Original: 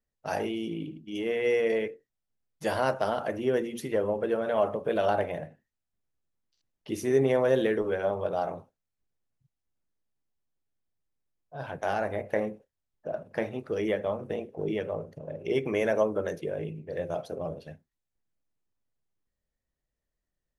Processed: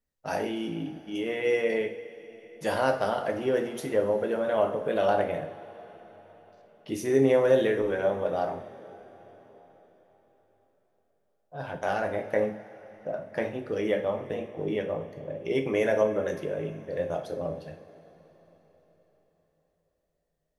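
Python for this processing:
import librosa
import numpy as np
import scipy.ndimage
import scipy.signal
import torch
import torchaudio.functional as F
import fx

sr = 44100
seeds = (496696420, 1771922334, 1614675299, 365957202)

y = fx.rev_double_slope(x, sr, seeds[0], early_s=0.43, late_s=4.6, knee_db=-18, drr_db=4.5)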